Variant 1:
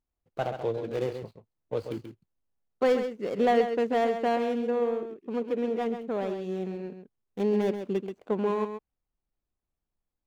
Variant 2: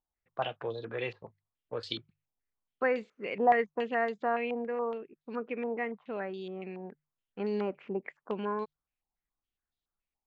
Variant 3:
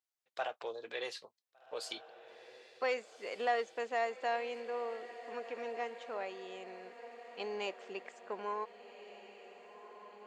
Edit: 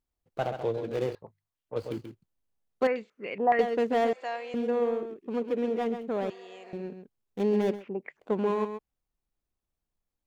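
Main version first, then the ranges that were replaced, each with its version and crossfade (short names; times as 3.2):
1
1.15–1.76 from 2
2.87–3.59 from 2
4.13–4.54 from 3
6.3–6.73 from 3
7.78–8.22 from 2, crossfade 0.16 s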